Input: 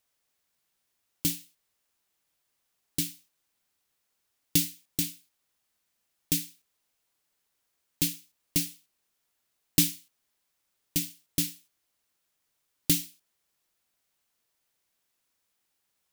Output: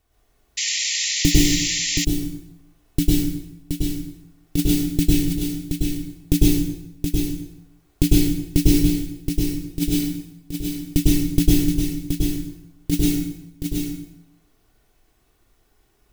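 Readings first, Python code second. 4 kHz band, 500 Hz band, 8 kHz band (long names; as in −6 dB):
+11.0 dB, +20.0 dB, +8.0 dB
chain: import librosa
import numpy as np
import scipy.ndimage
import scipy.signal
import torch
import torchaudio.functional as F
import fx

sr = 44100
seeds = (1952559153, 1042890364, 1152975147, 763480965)

y = fx.transient(x, sr, attack_db=-5, sustain_db=-9)
y = fx.tilt_eq(y, sr, slope=-4.0)
y = fx.over_compress(y, sr, threshold_db=-23.0, ratio=-0.5)
y = y + 0.47 * np.pad(y, (int(2.7 * sr / 1000.0), 0))[:len(y)]
y = y + 10.0 ** (-6.0 / 20.0) * np.pad(y, (int(723 * sr / 1000.0), 0))[:len(y)]
y = fx.rev_plate(y, sr, seeds[0], rt60_s=0.92, hf_ratio=0.75, predelay_ms=90, drr_db=-6.0)
y = fx.spec_paint(y, sr, seeds[1], shape='noise', start_s=0.57, length_s=1.48, low_hz=1800.0, high_hz=7500.0, level_db=-33.0)
y = fx.high_shelf(y, sr, hz=9300.0, db=8.0)
y = y * librosa.db_to_amplitude(8.0)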